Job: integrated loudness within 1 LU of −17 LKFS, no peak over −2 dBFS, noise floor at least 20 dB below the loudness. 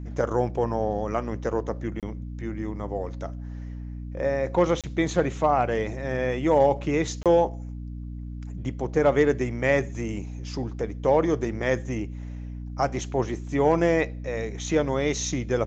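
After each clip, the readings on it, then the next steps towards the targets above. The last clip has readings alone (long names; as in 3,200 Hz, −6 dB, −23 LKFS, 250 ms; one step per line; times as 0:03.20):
number of dropouts 3; longest dropout 27 ms; mains hum 60 Hz; hum harmonics up to 300 Hz; level of the hum −33 dBFS; integrated loudness −26.0 LKFS; sample peak −8.5 dBFS; target loudness −17.0 LKFS
→ repair the gap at 0:02.00/0:04.81/0:07.23, 27 ms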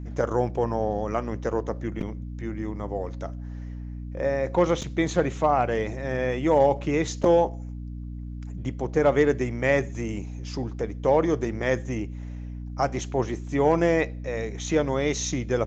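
number of dropouts 0; mains hum 60 Hz; hum harmonics up to 300 Hz; level of the hum −33 dBFS
→ hum removal 60 Hz, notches 5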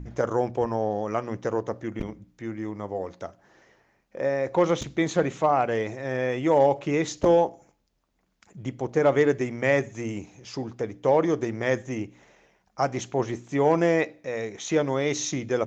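mains hum none found; integrated loudness −25.5 LKFS; sample peak −8.0 dBFS; target loudness −17.0 LKFS
→ level +8.5 dB
brickwall limiter −2 dBFS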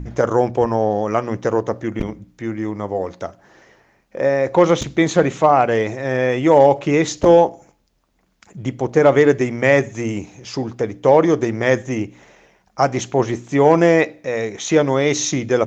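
integrated loudness −17.5 LKFS; sample peak −2.0 dBFS; background noise floor −62 dBFS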